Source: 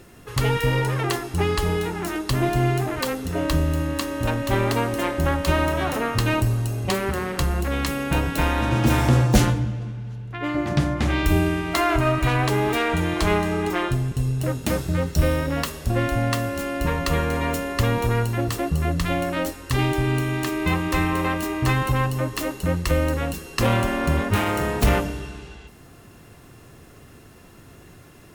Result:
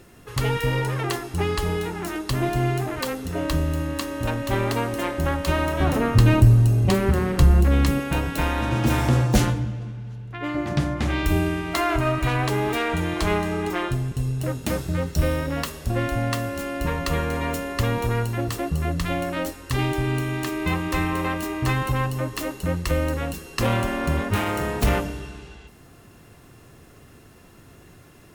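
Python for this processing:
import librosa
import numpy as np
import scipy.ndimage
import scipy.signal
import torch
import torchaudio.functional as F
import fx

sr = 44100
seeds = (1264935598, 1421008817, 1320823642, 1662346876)

y = fx.low_shelf(x, sr, hz=350.0, db=11.5, at=(5.8, 8.0))
y = y * librosa.db_to_amplitude(-2.0)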